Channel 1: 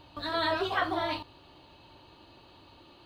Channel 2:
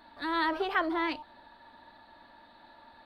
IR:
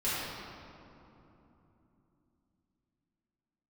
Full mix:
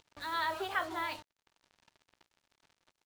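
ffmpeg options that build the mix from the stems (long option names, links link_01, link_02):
-filter_complex "[0:a]acompressor=mode=upward:threshold=-42dB:ratio=2.5,volume=-13dB[link_01];[1:a]highpass=560,volume=-5dB[link_02];[link_01][link_02]amix=inputs=2:normalize=0,acrusher=bits=7:mix=0:aa=0.5"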